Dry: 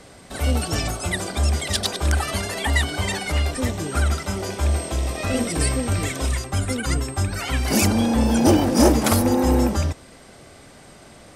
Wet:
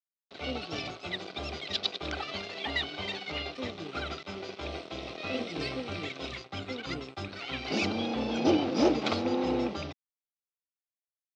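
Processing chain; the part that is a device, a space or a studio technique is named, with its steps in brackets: LPF 7200 Hz 24 dB/oct; blown loudspeaker (crossover distortion -33.5 dBFS; speaker cabinet 200–4500 Hz, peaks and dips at 230 Hz -6 dB, 570 Hz -3 dB, 960 Hz -7 dB, 1700 Hz -9 dB, 2500 Hz +3 dB, 3800 Hz +4 dB); gain -5 dB

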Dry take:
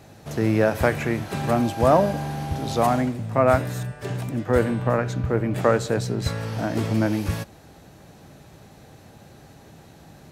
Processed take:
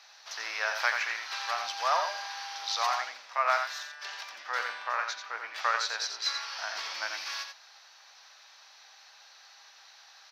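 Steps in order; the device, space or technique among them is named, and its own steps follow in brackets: headphones lying on a table (HPF 1000 Hz 24 dB/oct; bell 5900 Hz +8 dB 0.23 oct); resonant high shelf 6500 Hz -11.5 dB, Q 3; notches 50/100/150/200/250 Hz; outdoor echo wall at 15 m, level -6 dB; gain -1.5 dB

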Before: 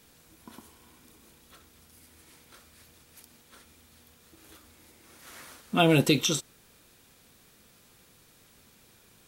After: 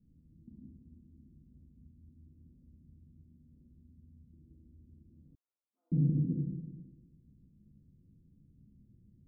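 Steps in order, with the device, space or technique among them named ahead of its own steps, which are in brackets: club heard from the street (limiter -19 dBFS, peak gain reduction 10 dB; LPF 220 Hz 24 dB/oct; reverb RT60 1.3 s, pre-delay 29 ms, DRR -3 dB); 5.35–5.92 inverse Chebyshev high-pass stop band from 180 Hz, stop band 80 dB

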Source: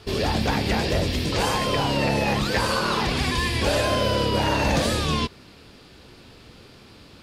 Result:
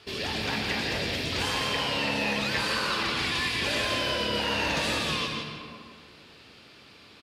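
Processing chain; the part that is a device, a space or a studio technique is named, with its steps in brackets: PA in a hall (HPF 170 Hz 6 dB/oct; bell 2600 Hz +7.5 dB 2.1 oct; echo 0.168 s -7 dB; reverb RT60 1.8 s, pre-delay 0.115 s, DRR 3 dB); dynamic EQ 700 Hz, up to -4 dB, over -34 dBFS, Q 0.73; gain -8.5 dB

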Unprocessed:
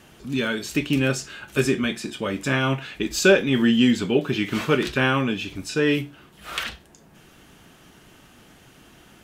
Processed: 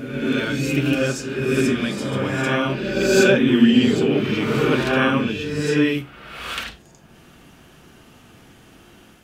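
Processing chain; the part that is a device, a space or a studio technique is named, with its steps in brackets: reverse reverb (reverse; reverb RT60 1.6 s, pre-delay 38 ms, DRR -2 dB; reverse); gain -2 dB

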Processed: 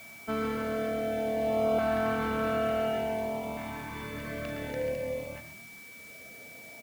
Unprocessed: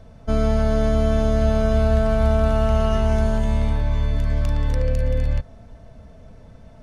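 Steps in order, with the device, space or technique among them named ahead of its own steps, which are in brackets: frequency-shifting echo 0.129 s, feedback 38%, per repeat +41 Hz, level -11 dB; shortwave radio (BPF 330–2800 Hz; tremolo 0.45 Hz, depth 47%; LFO notch saw up 0.56 Hz 450–1800 Hz; whine 2300 Hz -47 dBFS; white noise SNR 22 dB)

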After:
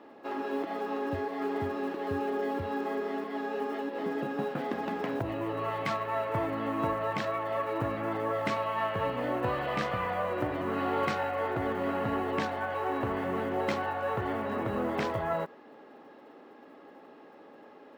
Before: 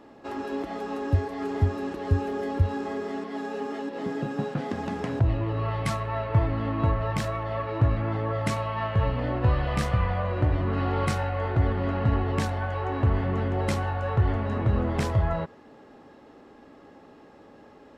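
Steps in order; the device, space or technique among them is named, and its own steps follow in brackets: early digital voice recorder (BPF 270–3800 Hz; block floating point 7-bit)

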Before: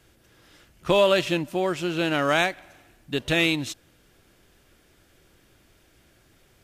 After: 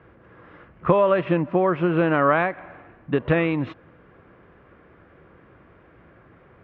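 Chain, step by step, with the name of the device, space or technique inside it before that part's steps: bass amplifier (compressor 4:1, threshold -26 dBFS, peak gain reduction 10 dB; speaker cabinet 62–2000 Hz, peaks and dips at 170 Hz +4 dB, 490 Hz +5 dB, 1100 Hz +8 dB); gain +8 dB

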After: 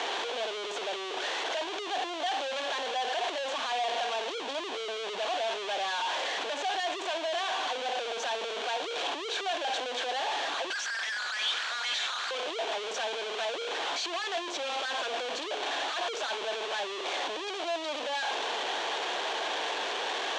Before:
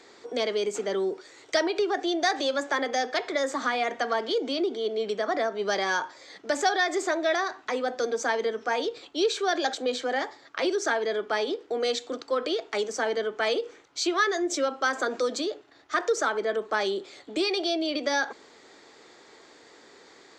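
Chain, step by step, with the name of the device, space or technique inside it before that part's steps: 10.7–12.31 elliptic high-pass 1300 Hz, stop band 40 dB; resonant high shelf 2300 Hz -12.5 dB, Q 1.5; home computer beeper (infinite clipping; speaker cabinet 710–5700 Hz, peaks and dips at 710 Hz +4 dB, 1300 Hz -10 dB, 2000 Hz -7 dB, 3300 Hz +5 dB, 5000 Hz -7 dB)

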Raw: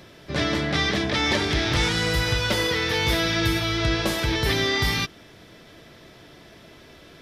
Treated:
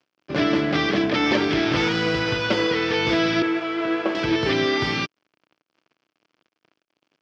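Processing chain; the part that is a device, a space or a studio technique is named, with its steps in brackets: 3.42–4.15 three-band isolator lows -23 dB, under 260 Hz, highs -17 dB, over 2700 Hz; blown loudspeaker (crossover distortion -40.5 dBFS; speaker cabinet 170–4600 Hz, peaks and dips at 310 Hz +5 dB, 860 Hz -3 dB, 1900 Hz -5 dB, 3800 Hz -9 dB); gain +4.5 dB

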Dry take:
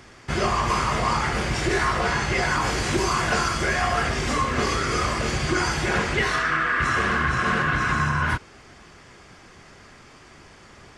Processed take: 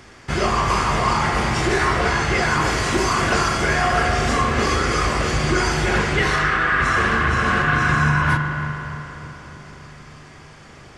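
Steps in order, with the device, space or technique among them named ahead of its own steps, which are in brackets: dub delay into a spring reverb (darkening echo 0.301 s, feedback 70%, low-pass 990 Hz, level -10 dB; spring tank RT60 3.5 s, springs 40 ms, chirp 30 ms, DRR 5.5 dB); gain +2.5 dB

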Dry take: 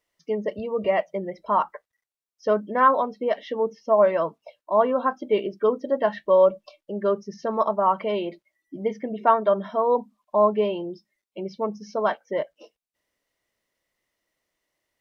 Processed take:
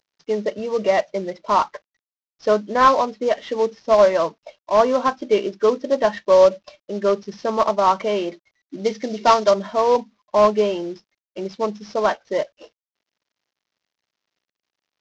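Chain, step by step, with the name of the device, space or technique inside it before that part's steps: early wireless headset (HPF 170 Hz 12 dB/oct; CVSD 32 kbps); 8.84–9.51 bell 5100 Hz +9 dB 1.5 oct; gain +4.5 dB

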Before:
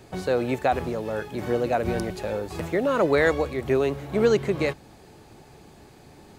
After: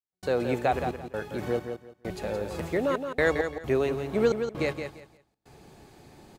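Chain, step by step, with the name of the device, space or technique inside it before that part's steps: trance gate with a delay (step gate ".xxx.xx..xxxx.x" 66 bpm -60 dB; feedback echo 0.171 s, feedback 22%, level -7.5 dB); gain -3 dB

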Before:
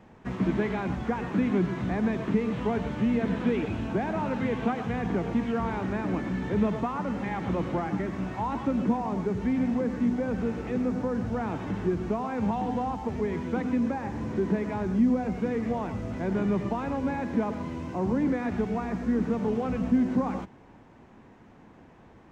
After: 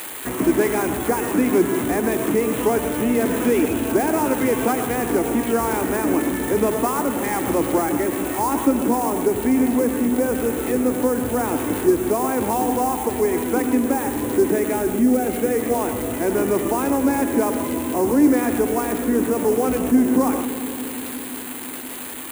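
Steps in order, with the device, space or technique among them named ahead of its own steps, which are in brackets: 14.48–15.59 notch 1000 Hz, Q 6; LPF 5000 Hz; resonant low shelf 240 Hz -6.5 dB, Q 3; budget class-D amplifier (switching dead time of 0.082 ms; switching spikes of -23 dBFS); darkening echo 0.173 s, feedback 85%, low-pass 1300 Hz, level -13 dB; gain +8 dB

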